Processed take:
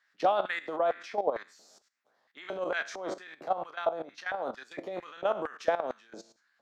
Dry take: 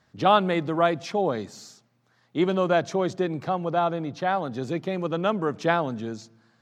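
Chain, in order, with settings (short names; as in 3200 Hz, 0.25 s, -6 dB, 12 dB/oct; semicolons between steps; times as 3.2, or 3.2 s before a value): spectral trails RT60 0.44 s; bell 200 Hz +14.5 dB 2.5 oct; LFO high-pass square 2.2 Hz 620–1700 Hz; 0.76–1.48 high shelf 4000 Hz -8 dB; level quantiser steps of 13 dB; limiter -9.5 dBFS, peak gain reduction 5 dB; 2.52–3.13 transient shaper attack -9 dB, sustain +3 dB; harmonic-percussive split harmonic -6 dB; gain -5 dB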